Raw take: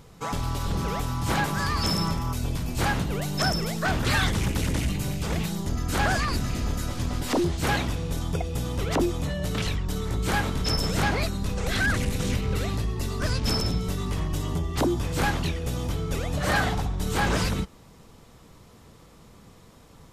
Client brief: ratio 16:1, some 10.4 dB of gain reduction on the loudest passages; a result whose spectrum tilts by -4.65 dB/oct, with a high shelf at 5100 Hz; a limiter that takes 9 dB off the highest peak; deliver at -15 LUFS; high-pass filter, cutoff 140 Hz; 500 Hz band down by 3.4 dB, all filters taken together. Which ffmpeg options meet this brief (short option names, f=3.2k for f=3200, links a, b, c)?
-af "highpass=140,equalizer=f=500:t=o:g=-4.5,highshelf=f=5.1k:g=-3.5,acompressor=threshold=-32dB:ratio=16,volume=25dB,alimiter=limit=-6.5dB:level=0:latency=1"